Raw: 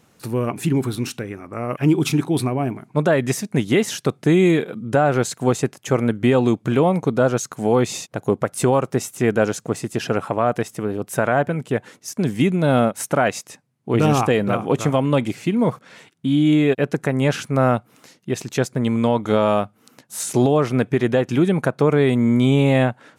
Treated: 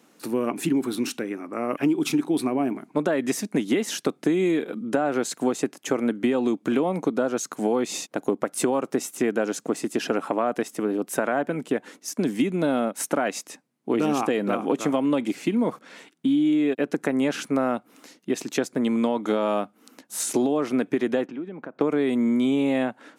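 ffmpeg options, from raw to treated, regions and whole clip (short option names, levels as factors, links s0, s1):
-filter_complex "[0:a]asettb=1/sr,asplit=3[s0][s1][s2];[s0]atrim=end=21.264[s3];[s1]atrim=start=21.26:end=21.81,asetpts=PTS-STARTPTS,afade=t=in:d=0.004:c=qsin,afade=t=out:st=0.546:d=0.004:c=qsin,acompressor=threshold=0.0251:ratio=6:attack=3.2:release=140:knee=1:detection=peak,highpass=120,lowpass=2200[s4];[s2]atrim=start=21.806[s5];[s3][s4]acrossfade=d=0.004:c1=hsin:c2=qsin[s6];[s6][s5]acrossfade=d=0.004:c1=qsin:c2=hsin,highpass=f=200:w=0.5412,highpass=f=200:w=1.3066,equalizer=f=290:w=3.3:g=6,acompressor=threshold=0.126:ratio=6,volume=0.891"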